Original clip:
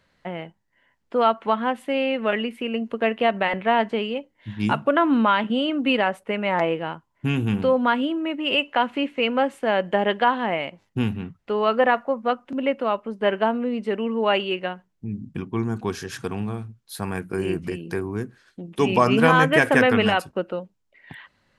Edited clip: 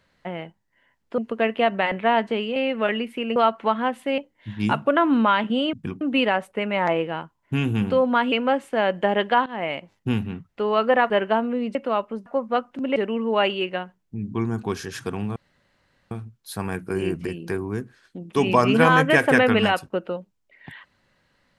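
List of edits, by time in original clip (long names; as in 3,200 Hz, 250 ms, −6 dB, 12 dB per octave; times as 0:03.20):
0:01.18–0:02.00: swap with 0:02.80–0:04.18
0:08.04–0:09.22: remove
0:10.36–0:10.61: fade in, from −16 dB
0:12.00–0:12.70: swap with 0:13.21–0:13.86
0:15.24–0:15.52: move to 0:05.73
0:16.54: splice in room tone 0.75 s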